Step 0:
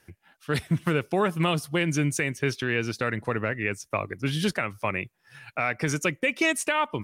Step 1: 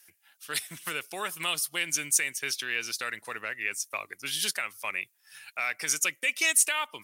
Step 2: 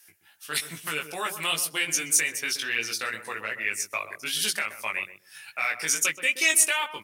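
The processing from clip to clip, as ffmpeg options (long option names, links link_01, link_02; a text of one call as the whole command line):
ffmpeg -i in.wav -af "aderivative,volume=9dB" out.wav
ffmpeg -i in.wav -filter_complex "[0:a]flanger=delay=17.5:depth=2.4:speed=2.5,asplit=2[link_01][link_02];[link_02]adelay=127,lowpass=frequency=810:poles=1,volume=-8dB,asplit=2[link_03][link_04];[link_04]adelay=127,lowpass=frequency=810:poles=1,volume=0.18,asplit=2[link_05][link_06];[link_06]adelay=127,lowpass=frequency=810:poles=1,volume=0.18[link_07];[link_01][link_03][link_05][link_07]amix=inputs=4:normalize=0,volume=6dB" out.wav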